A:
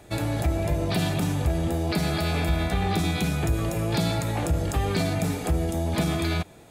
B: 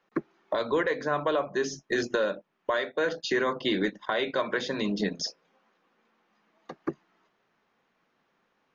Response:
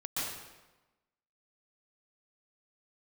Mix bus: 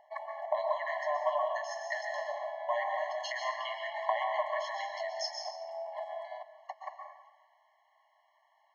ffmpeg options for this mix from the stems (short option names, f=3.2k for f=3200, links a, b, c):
-filter_complex "[0:a]lowpass=1.1k,volume=-5dB,asplit=2[a][b];[b]volume=-17.5dB[c];[1:a]tiltshelf=f=1.4k:g=7,acompressor=threshold=-27dB:ratio=6,lowshelf=f=480:g=-9,volume=2dB,asplit=2[d][e];[e]volume=-4dB[f];[2:a]atrim=start_sample=2205[g];[c][f]amix=inputs=2:normalize=0[h];[h][g]afir=irnorm=-1:irlink=0[i];[a][d][i]amix=inputs=3:normalize=0,afftfilt=real='re*eq(mod(floor(b*sr/1024/560),2),1)':imag='im*eq(mod(floor(b*sr/1024/560),2),1)':win_size=1024:overlap=0.75"